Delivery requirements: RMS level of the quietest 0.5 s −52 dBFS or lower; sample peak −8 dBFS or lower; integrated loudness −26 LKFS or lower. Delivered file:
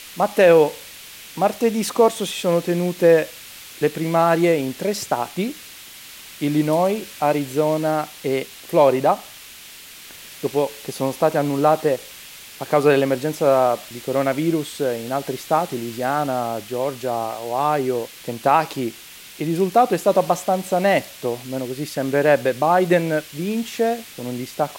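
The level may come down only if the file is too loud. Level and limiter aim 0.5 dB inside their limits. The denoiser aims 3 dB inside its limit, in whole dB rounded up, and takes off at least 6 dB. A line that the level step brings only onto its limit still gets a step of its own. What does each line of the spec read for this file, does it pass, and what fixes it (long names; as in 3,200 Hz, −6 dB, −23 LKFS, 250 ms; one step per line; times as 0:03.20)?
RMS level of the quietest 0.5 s −41 dBFS: out of spec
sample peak −4.0 dBFS: out of spec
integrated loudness −20.5 LKFS: out of spec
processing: broadband denoise 8 dB, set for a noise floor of −41 dBFS
level −6 dB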